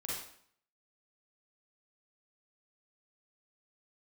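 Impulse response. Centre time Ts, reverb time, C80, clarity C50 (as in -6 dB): 64 ms, 0.60 s, 4.0 dB, -2.0 dB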